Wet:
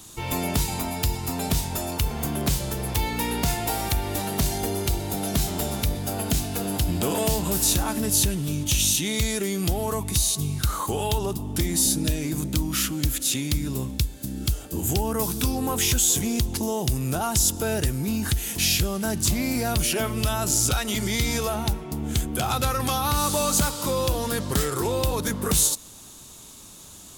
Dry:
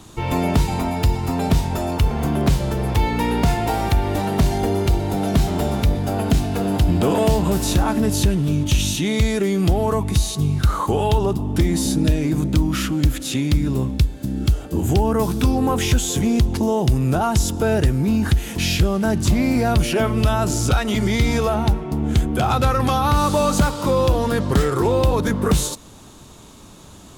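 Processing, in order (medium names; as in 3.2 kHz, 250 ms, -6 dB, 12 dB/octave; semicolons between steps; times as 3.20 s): pre-emphasis filter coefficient 0.8; trim +6 dB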